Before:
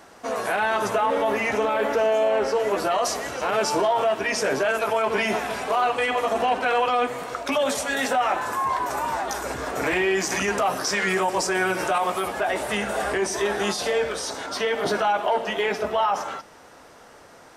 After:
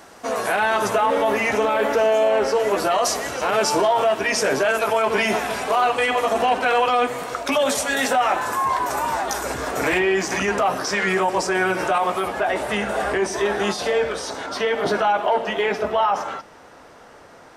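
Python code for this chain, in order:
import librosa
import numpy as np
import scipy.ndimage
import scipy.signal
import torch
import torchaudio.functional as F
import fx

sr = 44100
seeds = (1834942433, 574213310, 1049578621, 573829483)

y = fx.high_shelf(x, sr, hz=5000.0, db=fx.steps((0.0, 3.0), (9.98, -7.5)))
y = y * 10.0 ** (3.0 / 20.0)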